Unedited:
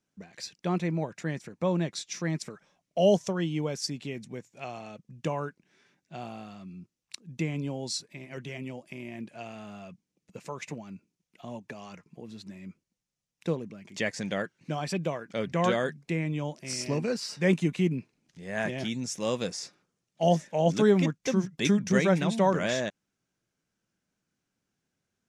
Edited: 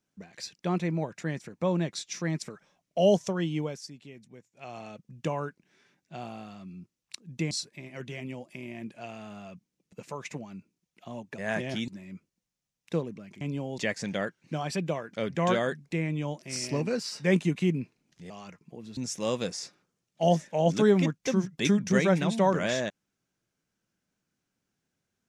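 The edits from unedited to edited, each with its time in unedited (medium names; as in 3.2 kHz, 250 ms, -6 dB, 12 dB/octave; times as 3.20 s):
3.59–4.80 s: dip -11 dB, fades 0.25 s
7.51–7.88 s: move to 13.95 s
11.75–12.42 s: swap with 18.47–18.97 s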